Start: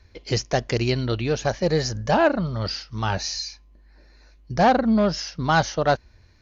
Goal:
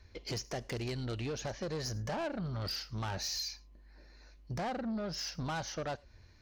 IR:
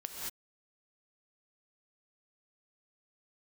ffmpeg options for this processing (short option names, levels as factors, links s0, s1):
-filter_complex "[0:a]acompressor=threshold=0.0562:ratio=6,asoftclip=type=tanh:threshold=0.0398,asplit=2[s0][s1];[1:a]atrim=start_sample=2205,afade=t=out:st=0.16:d=0.01,atrim=end_sample=7497,highshelf=f=4300:g=10.5[s2];[s1][s2]afir=irnorm=-1:irlink=0,volume=0.211[s3];[s0][s3]amix=inputs=2:normalize=0,volume=0.531"